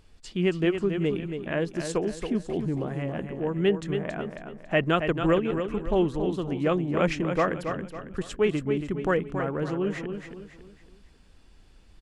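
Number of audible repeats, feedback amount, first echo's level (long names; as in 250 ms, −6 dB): 4, 38%, −7.5 dB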